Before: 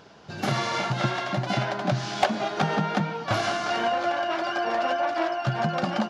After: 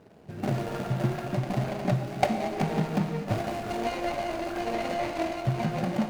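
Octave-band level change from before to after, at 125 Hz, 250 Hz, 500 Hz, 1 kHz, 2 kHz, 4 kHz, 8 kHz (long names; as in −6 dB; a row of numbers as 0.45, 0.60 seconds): +0.5, +0.5, −3.0, −6.0, −8.5, −9.5, −5.5 decibels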